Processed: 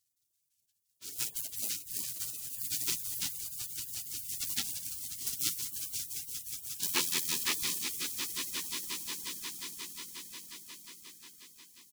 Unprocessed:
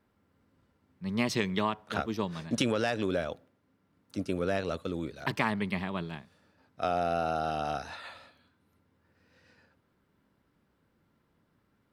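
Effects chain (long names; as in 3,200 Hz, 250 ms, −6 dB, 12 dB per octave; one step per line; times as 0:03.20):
each half-wave held at its own peak
high-shelf EQ 3,300 Hz −4.5 dB
multi-tap delay 44/60/228/684 ms −15.5/−6.5/−16/−19.5 dB
auto-filter high-pass saw up 5.9 Hz 550–1,800 Hz
on a send: echo that builds up and dies away 179 ms, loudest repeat 5, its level −11 dB
on the sum: gate on every frequency bin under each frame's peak −30 dB weak
level +8.5 dB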